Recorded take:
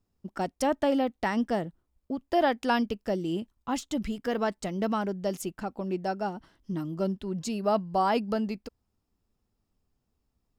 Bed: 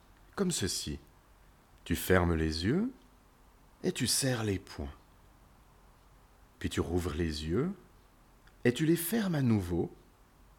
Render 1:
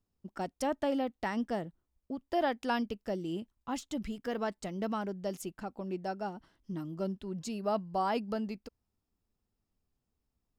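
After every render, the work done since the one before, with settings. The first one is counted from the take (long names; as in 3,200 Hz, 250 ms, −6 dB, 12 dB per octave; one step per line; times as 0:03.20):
level −6 dB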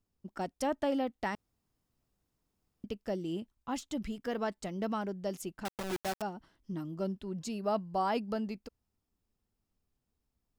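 0:01.35–0:02.84: fill with room tone
0:05.65–0:06.22: bit-depth reduction 6 bits, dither none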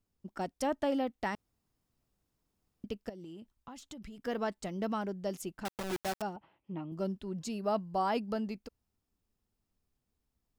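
0:03.09–0:04.19: downward compressor 16 to 1, threshold −43 dBFS
0:06.36–0:06.92: loudspeaker in its box 120–2,900 Hz, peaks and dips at 240 Hz −9 dB, 560 Hz +4 dB, 840 Hz +9 dB, 1,600 Hz −7 dB, 2,500 Hz +10 dB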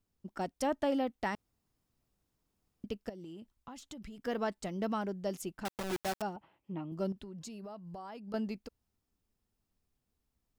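0:07.12–0:08.34: downward compressor 12 to 1, threshold −42 dBFS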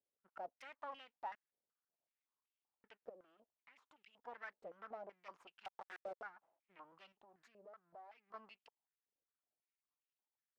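half-wave rectification
band-pass on a step sequencer 5.3 Hz 530–2,800 Hz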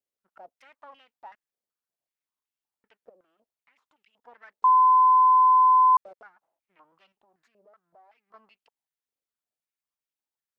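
0:04.64–0:05.97: beep over 1,020 Hz −14 dBFS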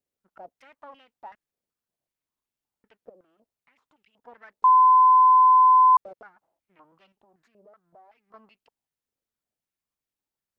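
low-shelf EQ 460 Hz +11 dB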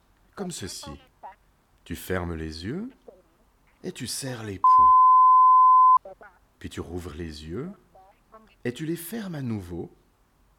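mix in bed −2.5 dB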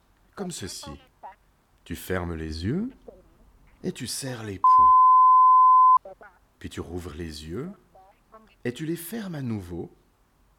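0:02.50–0:03.96: low-shelf EQ 270 Hz +8.5 dB
0:07.20–0:07.65: high-shelf EQ 6,700 Hz +9 dB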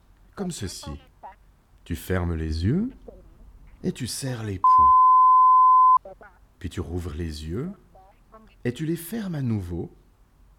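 low-shelf EQ 170 Hz +9.5 dB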